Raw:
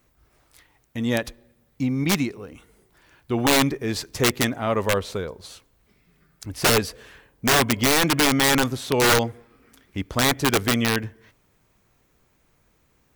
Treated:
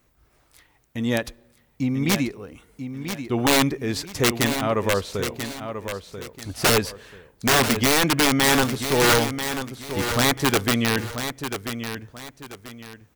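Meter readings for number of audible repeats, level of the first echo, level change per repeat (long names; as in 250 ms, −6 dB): 2, −9.0 dB, −10.0 dB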